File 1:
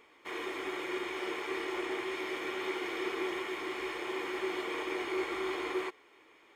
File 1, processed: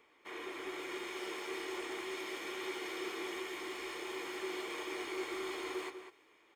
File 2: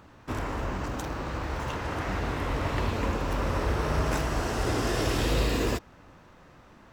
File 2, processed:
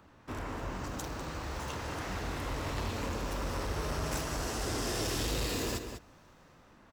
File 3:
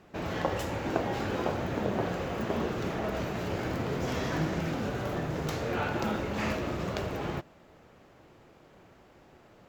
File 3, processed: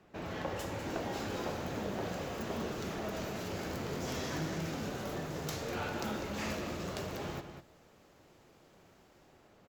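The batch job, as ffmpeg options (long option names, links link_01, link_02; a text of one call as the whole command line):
ffmpeg -i in.wav -filter_complex "[0:a]asplit=2[link_01][link_02];[link_02]adelay=198.3,volume=-9dB,highshelf=frequency=4000:gain=-4.46[link_03];[link_01][link_03]amix=inputs=2:normalize=0,asoftclip=type=tanh:threshold=-21dB,bandreject=frequency=60:width_type=h:width=6,bandreject=frequency=120:width_type=h:width=6,acrossover=split=180|4100[link_04][link_05][link_06];[link_06]dynaudnorm=framelen=170:gausssize=9:maxgain=9dB[link_07];[link_04][link_05][link_07]amix=inputs=3:normalize=0,volume=-6dB" out.wav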